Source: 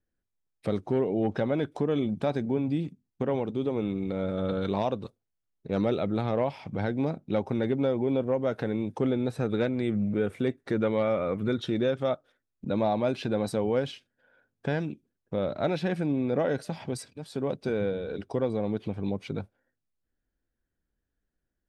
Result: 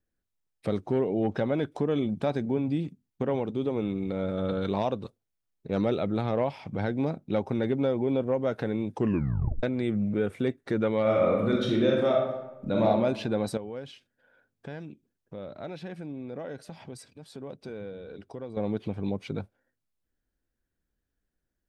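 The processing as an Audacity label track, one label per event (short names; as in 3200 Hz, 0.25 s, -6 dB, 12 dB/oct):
8.960000	8.960000	tape stop 0.67 s
11.010000	12.860000	reverb throw, RT60 1 s, DRR -1.5 dB
13.570000	18.570000	compressor 1.5:1, threshold -54 dBFS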